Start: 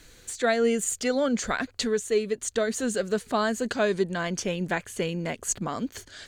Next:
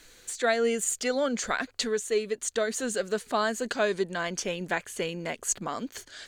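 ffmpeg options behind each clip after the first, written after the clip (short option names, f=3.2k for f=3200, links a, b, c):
-af "equalizer=f=73:w=0.35:g=-11"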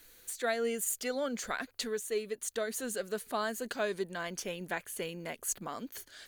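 -af "aexciter=amount=6:drive=3:freq=10k,volume=-7dB"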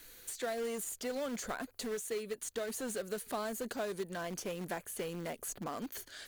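-filter_complex "[0:a]acrossover=split=1100|6400[a][b][c];[a]acompressor=threshold=-36dB:ratio=4[d];[b]acompressor=threshold=-50dB:ratio=4[e];[c]acompressor=threshold=-46dB:ratio=4[f];[d][e][f]amix=inputs=3:normalize=0,asplit=2[g][h];[h]aeval=exprs='(mod(75*val(0)+1,2)-1)/75':c=same,volume=-10.5dB[i];[g][i]amix=inputs=2:normalize=0,volume=1dB"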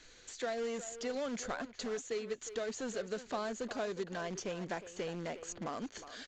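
-filter_complex "[0:a]aresample=16000,aresample=44100,asplit=2[a][b];[b]adelay=360,highpass=300,lowpass=3.4k,asoftclip=type=hard:threshold=-33dB,volume=-11dB[c];[a][c]amix=inputs=2:normalize=0"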